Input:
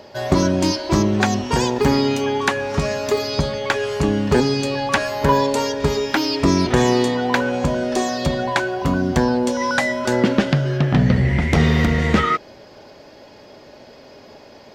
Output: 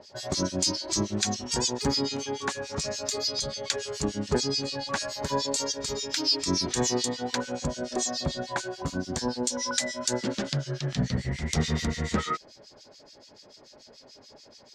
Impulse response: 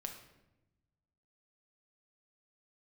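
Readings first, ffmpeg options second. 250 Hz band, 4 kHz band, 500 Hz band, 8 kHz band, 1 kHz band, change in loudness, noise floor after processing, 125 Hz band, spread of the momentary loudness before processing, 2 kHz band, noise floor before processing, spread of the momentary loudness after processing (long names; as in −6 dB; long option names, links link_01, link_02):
−12.5 dB, −2.5 dB, −12.5 dB, +2.0 dB, −13.0 dB, −9.5 dB, −54 dBFS, −12.5 dB, 5 LU, −13.5 dB, −44 dBFS, 6 LU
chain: -filter_complex "[0:a]lowpass=frequency=7200:width_type=q:width=2.1,aexciter=amount=4.1:drive=1.2:freq=3800,acrossover=split=2000[link_01][link_02];[link_01]aeval=exprs='val(0)*(1-1/2+1/2*cos(2*PI*6.9*n/s))':channel_layout=same[link_03];[link_02]aeval=exprs='val(0)*(1-1/2-1/2*cos(2*PI*6.9*n/s))':channel_layout=same[link_04];[link_03][link_04]amix=inputs=2:normalize=0,volume=-8dB"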